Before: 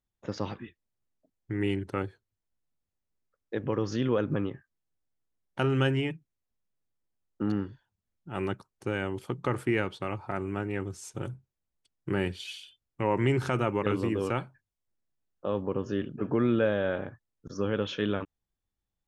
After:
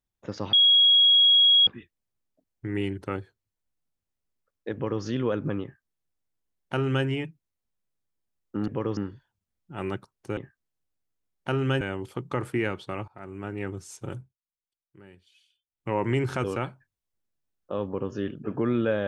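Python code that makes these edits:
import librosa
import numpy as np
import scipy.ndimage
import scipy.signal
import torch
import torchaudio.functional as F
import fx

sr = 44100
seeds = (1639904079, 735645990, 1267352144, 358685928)

y = fx.edit(x, sr, fx.insert_tone(at_s=0.53, length_s=1.14, hz=3310.0, db=-14.5),
    fx.duplicate(start_s=3.6, length_s=0.29, to_s=7.54),
    fx.duplicate(start_s=4.48, length_s=1.44, to_s=8.94),
    fx.fade_in_from(start_s=10.21, length_s=0.54, floor_db=-20.0),
    fx.fade_down_up(start_s=11.3, length_s=1.72, db=-22.0, fade_s=0.18),
    fx.cut(start_s=13.57, length_s=0.61), tone=tone)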